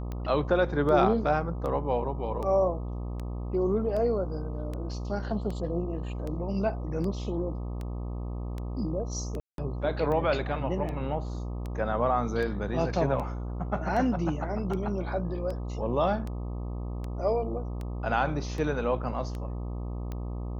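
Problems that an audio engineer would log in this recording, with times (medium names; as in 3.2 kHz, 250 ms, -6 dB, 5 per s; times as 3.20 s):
buzz 60 Hz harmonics 21 -34 dBFS
tick 78 rpm -24 dBFS
9.40–9.58 s: dropout 182 ms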